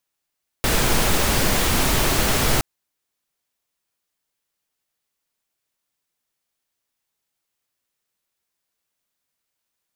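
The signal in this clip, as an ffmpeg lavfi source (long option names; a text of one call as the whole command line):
ffmpeg -f lavfi -i "anoisesrc=color=pink:amplitude=0.61:duration=1.97:sample_rate=44100:seed=1" out.wav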